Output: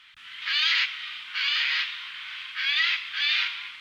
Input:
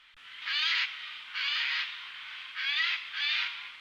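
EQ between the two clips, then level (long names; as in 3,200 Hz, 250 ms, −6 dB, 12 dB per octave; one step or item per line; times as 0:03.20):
high-pass filter 59 Hz
parametric band 570 Hz −15 dB 0.96 octaves
+6.0 dB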